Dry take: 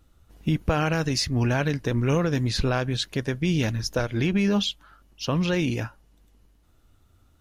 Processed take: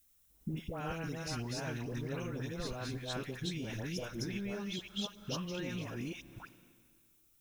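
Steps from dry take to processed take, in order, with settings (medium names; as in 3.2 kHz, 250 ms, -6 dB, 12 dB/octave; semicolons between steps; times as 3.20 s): chunks repeated in reverse 266 ms, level -1 dB; peaking EQ 80 Hz -8.5 dB 0.69 oct; gate -46 dBFS, range -16 dB; Schroeder reverb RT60 2 s, combs from 33 ms, DRR 19.5 dB; compression 6:1, threshold -32 dBFS, peak gain reduction 15 dB; phase dispersion highs, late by 107 ms, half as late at 1.1 kHz; added noise blue -68 dBFS; treble shelf 7.1 kHz +4.5 dB; band-stop 4.6 kHz, Q 8.8; trim -5 dB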